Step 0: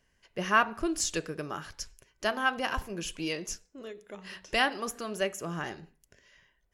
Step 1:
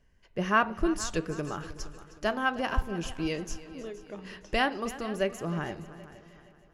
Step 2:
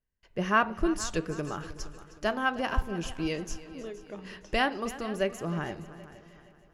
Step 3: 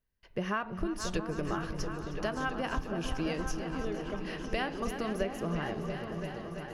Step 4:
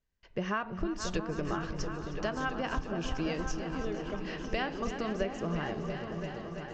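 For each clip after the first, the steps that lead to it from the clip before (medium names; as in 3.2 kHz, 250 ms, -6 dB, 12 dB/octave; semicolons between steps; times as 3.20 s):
tilt EQ -2 dB/octave; multi-head delay 156 ms, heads second and third, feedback 43%, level -17.5 dB
gate with hold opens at -55 dBFS
peaking EQ 7.4 kHz -10 dB 0.33 oct; compression 5:1, threshold -33 dBFS, peak gain reduction 14 dB; on a send: delay with an opening low-pass 339 ms, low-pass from 200 Hz, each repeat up 2 oct, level -3 dB; on the sum: trim +2.5 dB
steep low-pass 7.9 kHz 96 dB/octave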